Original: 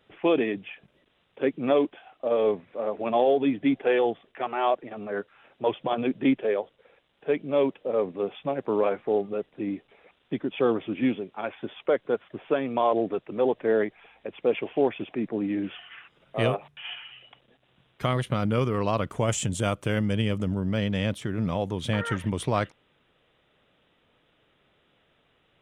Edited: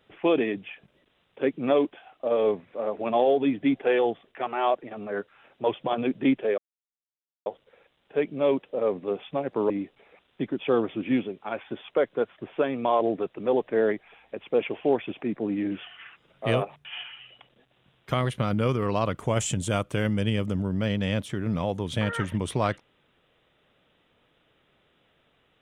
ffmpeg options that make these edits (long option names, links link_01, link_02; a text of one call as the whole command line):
ffmpeg -i in.wav -filter_complex "[0:a]asplit=3[link_01][link_02][link_03];[link_01]atrim=end=6.58,asetpts=PTS-STARTPTS,afade=type=out:start_time=6.576:duration=0.004:curve=hsin,apad=pad_dur=0.88[link_04];[link_02]atrim=start=6.58:end=8.822,asetpts=PTS-STARTPTS,afade=type=in:duration=0.004:curve=hsin[link_05];[link_03]atrim=start=9.618[link_06];[link_04][link_05]concat=n=2:v=0:a=1[link_07];[link_07][link_06]acrossfade=duration=0.004:curve1=hsin:curve2=hsin" out.wav